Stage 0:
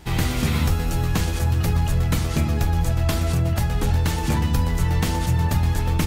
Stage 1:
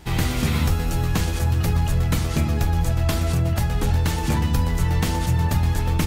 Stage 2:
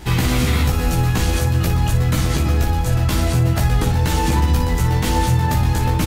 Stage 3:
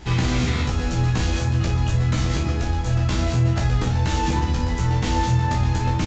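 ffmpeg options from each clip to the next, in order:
ffmpeg -i in.wav -af anull out.wav
ffmpeg -i in.wav -filter_complex "[0:a]alimiter=limit=-18dB:level=0:latency=1:release=49,asplit=2[link_01][link_02];[link_02]aecho=0:1:16|58:0.708|0.376[link_03];[link_01][link_03]amix=inputs=2:normalize=0,volume=7dB" out.wav
ffmpeg -i in.wav -filter_complex "[0:a]asplit=2[link_01][link_02];[link_02]adelay=33,volume=-8dB[link_03];[link_01][link_03]amix=inputs=2:normalize=0,aresample=16000,aresample=44100,volume=-4.5dB" out.wav

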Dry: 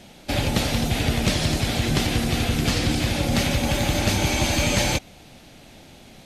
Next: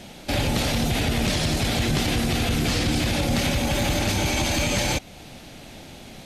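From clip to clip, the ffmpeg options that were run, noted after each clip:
ffmpeg -i in.wav -filter_complex "[0:a]asplit=2[link_01][link_02];[link_02]acompressor=threshold=-31dB:ratio=6,volume=-3dB[link_03];[link_01][link_03]amix=inputs=2:normalize=0,alimiter=limit=-14.5dB:level=0:latency=1:release=14" out.wav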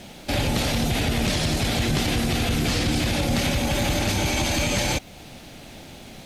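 ffmpeg -i in.wav -af "acrusher=bits=9:mix=0:aa=0.000001" out.wav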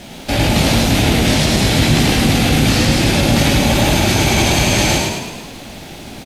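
ffmpeg -i in.wav -filter_complex "[0:a]asplit=2[link_01][link_02];[link_02]adelay=18,volume=-5.5dB[link_03];[link_01][link_03]amix=inputs=2:normalize=0,asplit=9[link_04][link_05][link_06][link_07][link_08][link_09][link_10][link_11][link_12];[link_05]adelay=106,afreqshift=37,volume=-3dB[link_13];[link_06]adelay=212,afreqshift=74,volume=-8dB[link_14];[link_07]adelay=318,afreqshift=111,volume=-13.1dB[link_15];[link_08]adelay=424,afreqshift=148,volume=-18.1dB[link_16];[link_09]adelay=530,afreqshift=185,volume=-23.1dB[link_17];[link_10]adelay=636,afreqshift=222,volume=-28.2dB[link_18];[link_11]adelay=742,afreqshift=259,volume=-33.2dB[link_19];[link_12]adelay=848,afreqshift=296,volume=-38.3dB[link_20];[link_04][link_13][link_14][link_15][link_16][link_17][link_18][link_19][link_20]amix=inputs=9:normalize=0,volume=6dB" out.wav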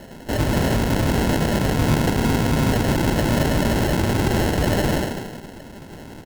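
ffmpeg -i in.wav -af "acrusher=samples=37:mix=1:aa=0.000001,volume=-6dB" out.wav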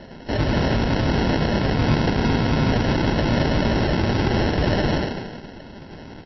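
ffmpeg -i in.wav -ar 16000 -c:a libmp3lame -b:a 24k out.mp3

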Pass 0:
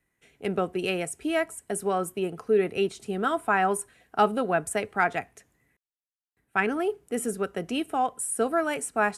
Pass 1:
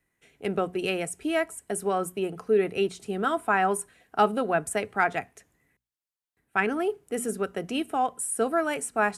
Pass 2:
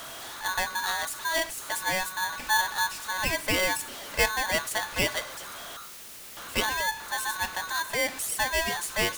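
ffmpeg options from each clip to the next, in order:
ffmpeg -i in.wav -af "bandreject=frequency=60:width_type=h:width=6,bandreject=frequency=120:width_type=h:width=6,bandreject=frequency=180:width_type=h:width=6,bandreject=frequency=240:width_type=h:width=6" out.wav
ffmpeg -i in.wav -af "aeval=exprs='val(0)+0.5*0.0282*sgn(val(0))':channel_layout=same,aeval=exprs='val(0)*sgn(sin(2*PI*1300*n/s))':channel_layout=same,volume=-3.5dB" out.wav

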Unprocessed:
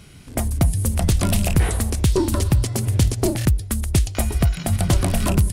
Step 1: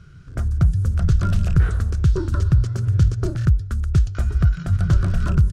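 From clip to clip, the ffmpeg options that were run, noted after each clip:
ffmpeg -i in.wav -af "firequalizer=gain_entry='entry(160,0);entry(230,-14);entry(370,-8);entry(850,-18);entry(1400,3);entry(2000,-15);entry(6200,-13);entry(10000,-28)':delay=0.05:min_phase=1,volume=2dB" out.wav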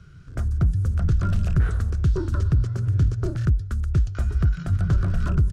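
ffmpeg -i in.wav -filter_complex "[0:a]acrossover=split=360|2400[link_01][link_02][link_03];[link_03]alimiter=level_in=9dB:limit=-24dB:level=0:latency=1:release=224,volume=-9dB[link_04];[link_01][link_02][link_04]amix=inputs=3:normalize=0,asoftclip=type=tanh:threshold=-9dB,volume=-2dB" out.wav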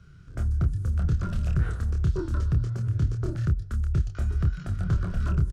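ffmpeg -i in.wav -filter_complex "[0:a]asplit=2[link_01][link_02];[link_02]adelay=27,volume=-5dB[link_03];[link_01][link_03]amix=inputs=2:normalize=0,volume=-5dB" out.wav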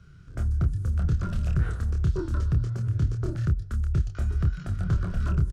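ffmpeg -i in.wav -af anull out.wav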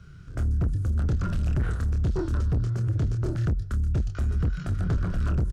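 ffmpeg -i in.wav -af "asoftclip=type=tanh:threshold=-24dB,volume=4dB" out.wav

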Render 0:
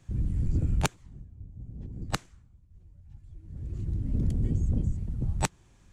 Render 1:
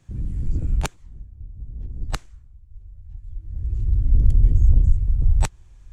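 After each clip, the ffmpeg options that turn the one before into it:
ffmpeg -i in.wav -af "asubboost=boost=9.5:cutoff=66" out.wav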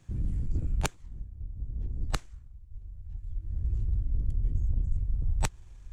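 ffmpeg -i in.wav -af "aeval=exprs='if(lt(val(0),0),0.708*val(0),val(0))':channel_layout=same,areverse,acompressor=threshold=-24dB:ratio=6,areverse" out.wav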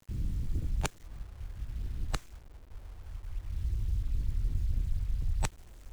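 ffmpeg -i in.wav -af "acrusher=bits=8:mix=0:aa=0.000001,volume=-3dB" out.wav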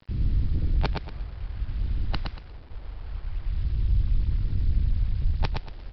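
ffmpeg -i in.wav -af "aresample=11025,aeval=exprs='0.158*sin(PI/2*1.78*val(0)/0.158)':channel_layout=same,aresample=44100,aecho=1:1:117|234|351|468:0.631|0.177|0.0495|0.0139,volume=-1.5dB" out.wav

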